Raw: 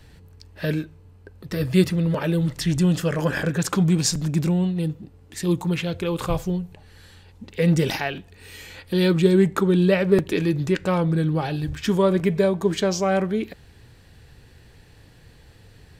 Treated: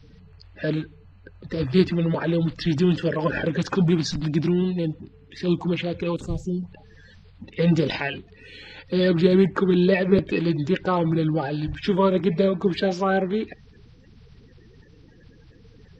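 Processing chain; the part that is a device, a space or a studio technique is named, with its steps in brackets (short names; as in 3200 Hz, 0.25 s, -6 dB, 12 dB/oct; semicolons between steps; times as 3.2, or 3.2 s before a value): clip after many re-uploads (LPF 4700 Hz 24 dB/oct; bin magnitudes rounded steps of 30 dB); 6.16–6.63 EQ curve 290 Hz 0 dB, 1000 Hz -22 dB, 3300 Hz -12 dB, 7400 Hz +12 dB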